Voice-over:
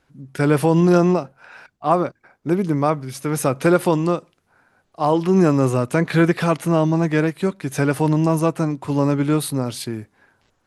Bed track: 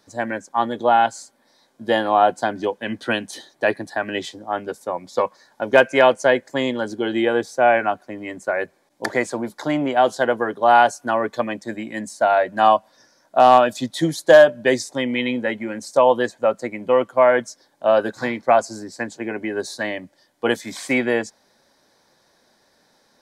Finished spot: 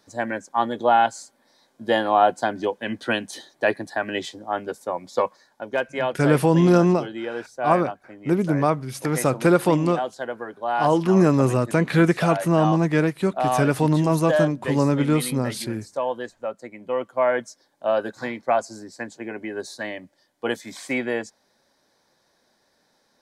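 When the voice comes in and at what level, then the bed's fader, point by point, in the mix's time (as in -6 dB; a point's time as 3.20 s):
5.80 s, -1.5 dB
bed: 5.28 s -1.5 dB
5.75 s -11 dB
16.67 s -11 dB
17.30 s -5.5 dB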